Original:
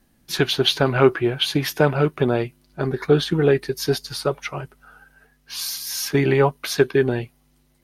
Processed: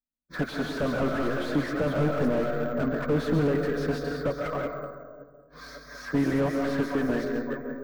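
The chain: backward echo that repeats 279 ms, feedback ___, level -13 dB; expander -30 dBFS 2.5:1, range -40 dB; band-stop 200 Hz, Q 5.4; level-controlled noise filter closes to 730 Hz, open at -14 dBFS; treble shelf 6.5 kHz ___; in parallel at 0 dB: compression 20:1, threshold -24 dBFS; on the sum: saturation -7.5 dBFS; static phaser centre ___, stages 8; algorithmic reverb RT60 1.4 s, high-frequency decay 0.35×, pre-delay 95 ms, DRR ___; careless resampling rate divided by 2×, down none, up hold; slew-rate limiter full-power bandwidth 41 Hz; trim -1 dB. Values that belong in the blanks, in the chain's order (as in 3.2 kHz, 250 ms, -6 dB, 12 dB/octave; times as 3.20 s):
64%, -6.5 dB, 570 Hz, 6.5 dB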